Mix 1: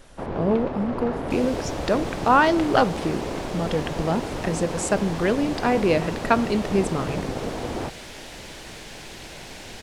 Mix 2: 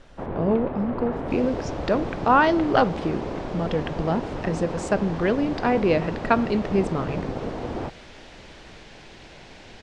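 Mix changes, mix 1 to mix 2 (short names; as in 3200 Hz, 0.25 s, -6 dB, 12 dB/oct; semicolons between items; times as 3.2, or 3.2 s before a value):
first sound: add air absorption 210 m; second sound -4.5 dB; master: add air absorption 110 m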